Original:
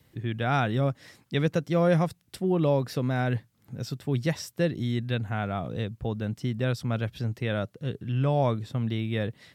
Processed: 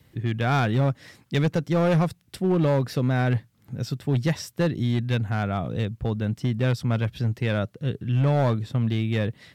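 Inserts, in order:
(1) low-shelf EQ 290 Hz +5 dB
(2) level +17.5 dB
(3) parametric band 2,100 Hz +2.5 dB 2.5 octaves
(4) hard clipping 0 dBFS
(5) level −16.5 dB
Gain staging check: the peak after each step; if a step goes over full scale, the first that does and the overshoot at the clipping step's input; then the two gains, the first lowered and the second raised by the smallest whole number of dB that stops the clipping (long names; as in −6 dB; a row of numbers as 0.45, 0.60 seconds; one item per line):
−10.5, +7.0, +7.5, 0.0, −16.5 dBFS
step 2, 7.5 dB
step 2 +9.5 dB, step 5 −8.5 dB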